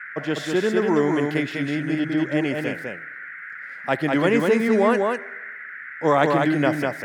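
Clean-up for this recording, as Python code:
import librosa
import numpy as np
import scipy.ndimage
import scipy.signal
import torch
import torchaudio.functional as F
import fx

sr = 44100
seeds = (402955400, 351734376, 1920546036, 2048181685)

y = fx.noise_reduce(x, sr, print_start_s=2.97, print_end_s=3.47, reduce_db=30.0)
y = fx.fix_echo_inverse(y, sr, delay_ms=199, level_db=-3.5)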